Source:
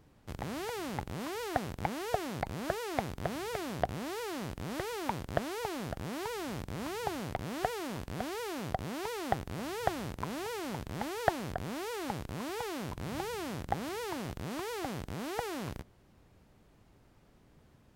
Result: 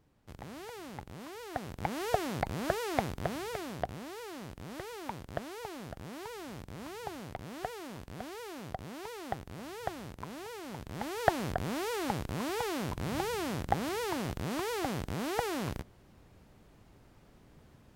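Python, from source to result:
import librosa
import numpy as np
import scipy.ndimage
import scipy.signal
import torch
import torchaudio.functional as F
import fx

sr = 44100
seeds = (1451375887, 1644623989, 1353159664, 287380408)

y = fx.gain(x, sr, db=fx.line((1.45, -7.0), (2.04, 2.5), (3.04, 2.5), (4.1, -5.5), (10.64, -5.5), (11.42, 3.5)))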